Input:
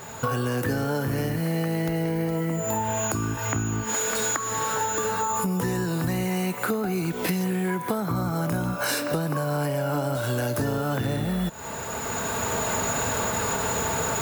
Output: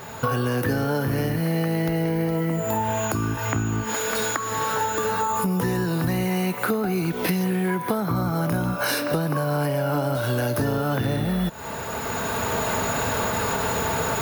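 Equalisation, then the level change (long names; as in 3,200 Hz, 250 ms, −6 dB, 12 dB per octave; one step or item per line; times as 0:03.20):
parametric band 7,500 Hz −11.5 dB 0.3 octaves
+2.5 dB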